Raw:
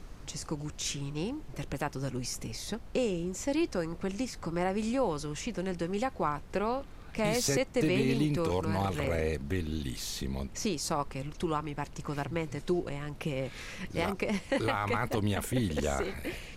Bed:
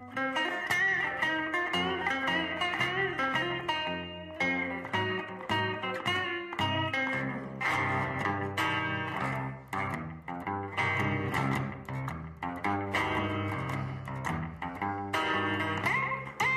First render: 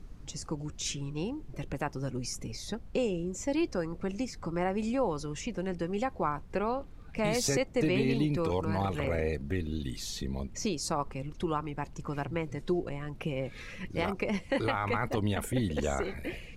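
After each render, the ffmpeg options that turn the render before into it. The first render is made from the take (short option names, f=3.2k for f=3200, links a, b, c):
-af "afftdn=nr=9:nf=-46"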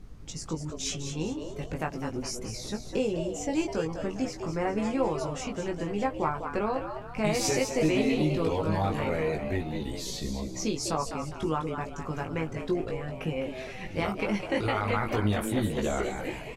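-filter_complex "[0:a]asplit=2[a][b];[b]adelay=19,volume=-3.5dB[c];[a][c]amix=inputs=2:normalize=0,asplit=2[d][e];[e]asplit=5[f][g][h][i][j];[f]adelay=204,afreqshift=120,volume=-8dB[k];[g]adelay=408,afreqshift=240,volume=-16dB[l];[h]adelay=612,afreqshift=360,volume=-23.9dB[m];[i]adelay=816,afreqshift=480,volume=-31.9dB[n];[j]adelay=1020,afreqshift=600,volume=-39.8dB[o];[k][l][m][n][o]amix=inputs=5:normalize=0[p];[d][p]amix=inputs=2:normalize=0"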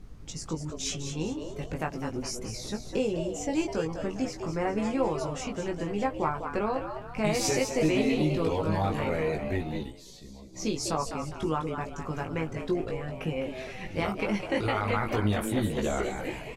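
-filter_complex "[0:a]asplit=3[a][b][c];[a]atrim=end=9.94,asetpts=PTS-STARTPTS,afade=t=out:st=9.79:d=0.15:silence=0.211349[d];[b]atrim=start=9.94:end=10.52,asetpts=PTS-STARTPTS,volume=-13.5dB[e];[c]atrim=start=10.52,asetpts=PTS-STARTPTS,afade=t=in:d=0.15:silence=0.211349[f];[d][e][f]concat=n=3:v=0:a=1"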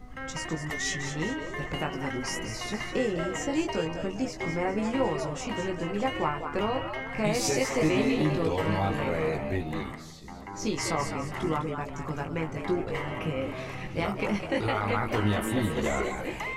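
-filter_complex "[1:a]volume=-7dB[a];[0:a][a]amix=inputs=2:normalize=0"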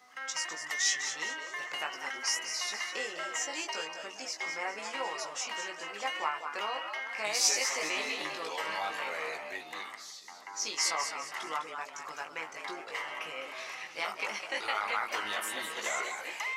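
-af "highpass=1k,equalizer=f=5.5k:t=o:w=0.76:g=6.5"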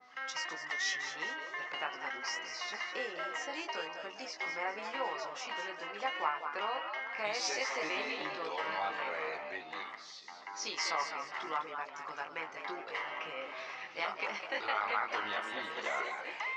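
-af "lowpass=f=5.2k:w=0.5412,lowpass=f=5.2k:w=1.3066,adynamicequalizer=threshold=0.00398:dfrequency=2200:dqfactor=0.7:tfrequency=2200:tqfactor=0.7:attack=5:release=100:ratio=0.375:range=3:mode=cutabove:tftype=highshelf"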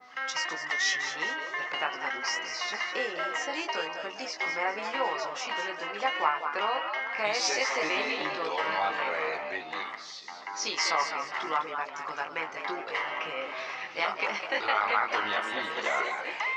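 -af "volume=7dB"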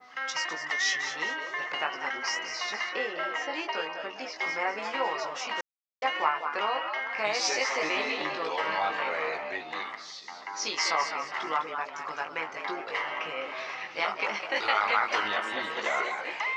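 -filter_complex "[0:a]asettb=1/sr,asplit=3[a][b][c];[a]atrim=end=2.894[d];[b]atrim=start=2.89:end=4.36,asetpts=PTS-STARTPTS,afade=t=in:d=0.004:c=qsin,afade=t=out:st=1.466:d=0.004:c=qsin,highpass=140,lowpass=4.4k[e];[c]atrim=start=4.356[f];[d][e]acrossfade=d=0.004:c1=hsin:c2=qsin[g];[g][f]acrossfade=d=0.004:c1=qsin:c2=hsin,asettb=1/sr,asplit=3[h][i][j];[h]atrim=end=14.564[k];[i]atrim=start=14.56:end=15.28,asetpts=PTS-STARTPTS,afade=t=in:d=0.004:c=qsin,afade=t=out:st=0.716:d=0.004:c=qsin,highshelf=f=3.9k:g=8.5[l];[j]atrim=start=15.276[m];[k][l]acrossfade=d=0.004:c1=hsin:c2=qsin[n];[n][m]acrossfade=d=0.004:c1=qsin:c2=hsin,asplit=3[o][p][q];[o]atrim=end=5.61,asetpts=PTS-STARTPTS,afade=t=out:st=5.606:d=0.004:c=hsin[r];[p]atrim=start=5.61:end=6.02,asetpts=PTS-STARTPTS,volume=0[s];[q]atrim=start=6.02,asetpts=PTS-STARTPTS,afade=t=in:d=0.004:c=hsin[t];[r][s][t]concat=n=3:v=0:a=1"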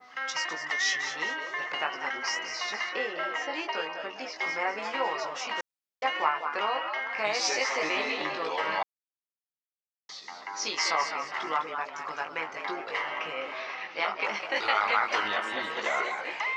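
-filter_complex "[0:a]asettb=1/sr,asplit=3[a][b][c];[a]atrim=end=13.584[d];[b]atrim=start=13.58:end=14.25,asetpts=PTS-STARTPTS,afade=t=in:d=0.004:c=qsin,afade=t=out:st=0.666:d=0.004:c=qsin,highpass=170,lowpass=5.3k[e];[c]atrim=start=14.246[f];[d][e]acrossfade=d=0.004:c1=hsin:c2=qsin[g];[g][f]acrossfade=d=0.004:c1=qsin:c2=hsin,asplit=3[h][i][j];[h]atrim=end=8.83,asetpts=PTS-STARTPTS,afade=t=out:st=8.826:d=0.004:c=hsin[k];[i]atrim=start=8.83:end=10.09,asetpts=PTS-STARTPTS,volume=0[l];[j]atrim=start=10.09,asetpts=PTS-STARTPTS,afade=t=in:d=0.004:c=hsin[m];[k][l][m]concat=n=3:v=0:a=1"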